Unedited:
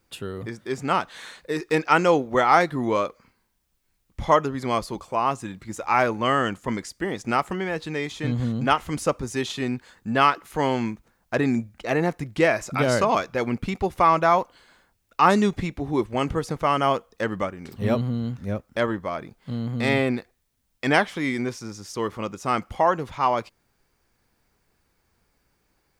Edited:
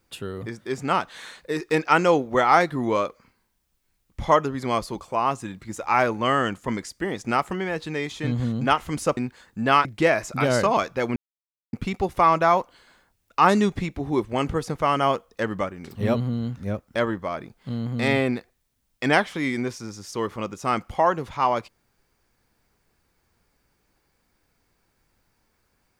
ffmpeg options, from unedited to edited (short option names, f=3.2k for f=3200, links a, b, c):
-filter_complex "[0:a]asplit=4[a][b][c][d];[a]atrim=end=9.172[e];[b]atrim=start=9.658:end=10.342[f];[c]atrim=start=12.228:end=13.54,asetpts=PTS-STARTPTS,afade=t=out:st=1.308:d=0.004:c=hsin,apad=pad_dur=0.57[g];[d]atrim=start=13.54,asetpts=PTS-STARTPTS,afade=t=in:d=0.004:c=hsin[h];[e][f]acrossfade=d=0.004:c1=hsin:c2=hsin[i];[g][h]concat=n=2:v=0:a=1[j];[i][j]acrossfade=d=0.004:c1=hsin:c2=hsin"